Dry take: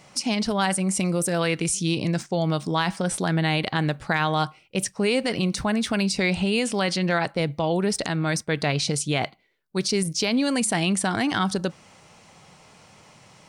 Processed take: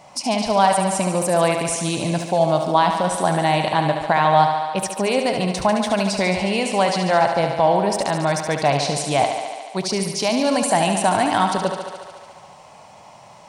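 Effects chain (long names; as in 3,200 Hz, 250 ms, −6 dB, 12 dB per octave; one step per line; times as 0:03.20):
flat-topped bell 780 Hz +10.5 dB 1.1 octaves
feedback echo with a high-pass in the loop 72 ms, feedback 77%, high-pass 180 Hz, level −7 dB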